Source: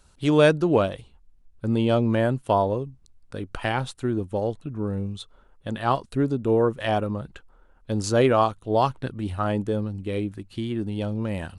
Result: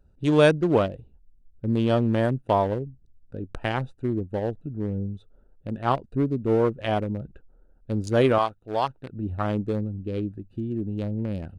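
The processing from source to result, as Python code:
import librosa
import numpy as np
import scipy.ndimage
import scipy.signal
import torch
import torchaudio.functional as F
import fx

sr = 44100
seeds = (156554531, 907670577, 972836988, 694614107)

y = fx.wiener(x, sr, points=41)
y = fx.low_shelf(y, sr, hz=450.0, db=-11.0, at=(8.38, 9.13))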